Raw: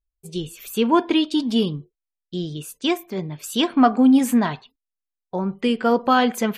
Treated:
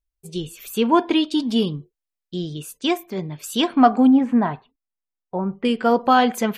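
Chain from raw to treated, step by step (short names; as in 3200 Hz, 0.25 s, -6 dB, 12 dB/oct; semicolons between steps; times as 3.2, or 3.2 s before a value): 4.07–5.65 LPF 1600 Hz 12 dB/oct; dynamic EQ 780 Hz, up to +4 dB, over -31 dBFS, Q 2.9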